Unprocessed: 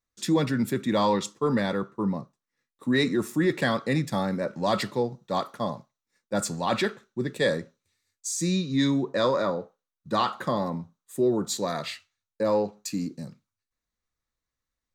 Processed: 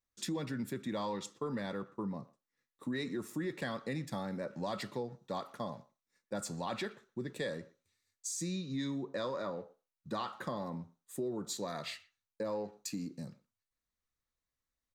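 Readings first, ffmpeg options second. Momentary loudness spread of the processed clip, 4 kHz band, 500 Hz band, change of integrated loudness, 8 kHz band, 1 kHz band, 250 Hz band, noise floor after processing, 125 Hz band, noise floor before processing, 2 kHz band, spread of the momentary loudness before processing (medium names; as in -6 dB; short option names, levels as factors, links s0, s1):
9 LU, -12.0 dB, -13.0 dB, -12.5 dB, -9.0 dB, -13.0 dB, -12.5 dB, under -85 dBFS, -12.0 dB, under -85 dBFS, -13.0 dB, 9 LU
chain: -filter_complex "[0:a]acompressor=threshold=0.0251:ratio=3,asplit=2[s0][s1];[s1]adelay=120,highpass=300,lowpass=3400,asoftclip=type=hard:threshold=0.0282,volume=0.1[s2];[s0][s2]amix=inputs=2:normalize=0,volume=0.562"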